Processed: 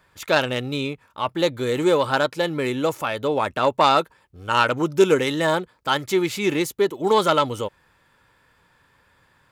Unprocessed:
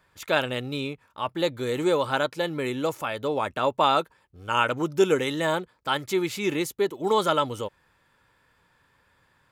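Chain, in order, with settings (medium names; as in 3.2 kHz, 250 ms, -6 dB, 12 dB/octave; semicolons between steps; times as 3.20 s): self-modulated delay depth 0.056 ms; trim +4.5 dB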